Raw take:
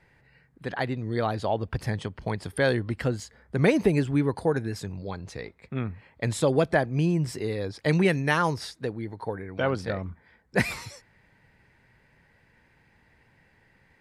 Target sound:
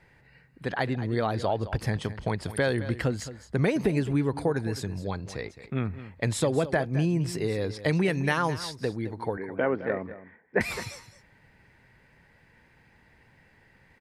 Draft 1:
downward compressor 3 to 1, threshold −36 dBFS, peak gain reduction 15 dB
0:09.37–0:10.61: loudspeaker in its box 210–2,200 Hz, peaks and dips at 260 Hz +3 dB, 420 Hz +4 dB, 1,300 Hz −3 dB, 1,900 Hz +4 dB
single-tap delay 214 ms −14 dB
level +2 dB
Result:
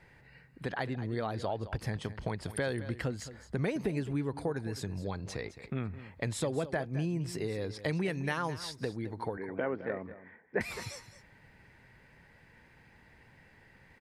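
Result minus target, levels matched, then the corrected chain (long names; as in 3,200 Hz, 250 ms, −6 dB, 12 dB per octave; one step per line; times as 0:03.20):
downward compressor: peak gain reduction +7.5 dB
downward compressor 3 to 1, threshold −24.5 dBFS, peak gain reduction 7.5 dB
0:09.37–0:10.61: loudspeaker in its box 210–2,200 Hz, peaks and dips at 260 Hz +3 dB, 420 Hz +4 dB, 1,300 Hz −3 dB, 1,900 Hz +4 dB
single-tap delay 214 ms −14 dB
level +2 dB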